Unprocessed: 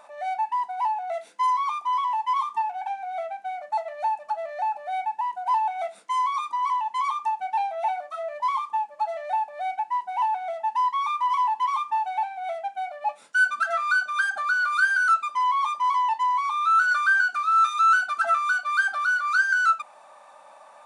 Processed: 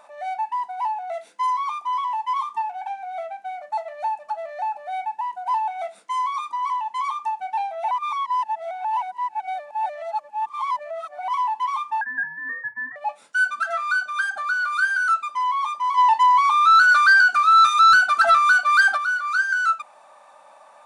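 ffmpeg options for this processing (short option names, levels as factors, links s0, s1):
-filter_complex "[0:a]asettb=1/sr,asplit=3[s0][s1][s2];[s0]atrim=end=12.014[s3];[s1]atrim=start=12.01:end=12.96,asetpts=PTS-STARTPTS,afade=t=in:d=0.004:c=qsin,afade=t=out:st=0.946:d=0.004:c=qsin,lowpass=f=2100:t=q:w=0.5098,lowpass=f=2100:t=q:w=0.6013,lowpass=f=2100:t=q:w=0.9,lowpass=f=2100:t=q:w=2.563,afreqshift=-2500[s4];[s2]atrim=start=12.956[s5];[s3][s4]acrossfade=d=0.004:c1=hsin:c2=qsin[s6];[s6][s5]acrossfade=d=0.004:c1=qsin:c2=hsin,asplit=3[s7][s8][s9];[s7]afade=t=out:st=15.97:d=0.02[s10];[s8]aeval=exprs='0.316*sin(PI/2*1.78*val(0)/0.316)':c=same,afade=t=in:st=15.97:d=0.02,afade=t=out:st=18.96:d=0.02[s11];[s9]afade=t=in:st=18.96:d=0.02[s12];[s10][s11][s12]amix=inputs=3:normalize=0,asplit=3[s13][s14][s15];[s13]atrim=end=7.912[s16];[s14]atrim=start=7.908:end=11.282,asetpts=PTS-STARTPTS,areverse[s17];[s15]atrim=start=11.278[s18];[s16][s17]acrossfade=d=0.004:c1=hsin:c2=hsin[s19];[s19][s18]acrossfade=d=0.004:c1=hsin:c2=hsin"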